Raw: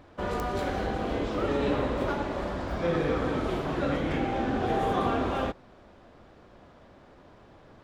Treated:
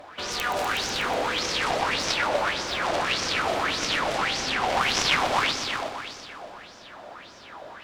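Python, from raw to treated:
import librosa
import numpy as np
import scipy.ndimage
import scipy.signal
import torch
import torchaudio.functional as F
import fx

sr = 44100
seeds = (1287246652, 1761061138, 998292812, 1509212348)

p1 = fx.low_shelf(x, sr, hz=140.0, db=-8.0)
p2 = 10.0 ** (-27.5 / 20.0) * np.tanh(p1 / 10.0 ** (-27.5 / 20.0))
p3 = p1 + (p2 * librosa.db_to_amplitude(-1.0))
p4 = fx.tilt_shelf(p3, sr, db=-6.0, hz=1100.0)
p5 = fx.cheby_harmonics(p4, sr, harmonics=(7,), levels_db=(-11,), full_scale_db=-11.0)
p6 = p5 + fx.echo_heads(p5, sr, ms=123, heads='all three', feedback_pct=49, wet_db=-8.0, dry=0)
y = fx.bell_lfo(p6, sr, hz=1.7, low_hz=620.0, high_hz=6000.0, db=15)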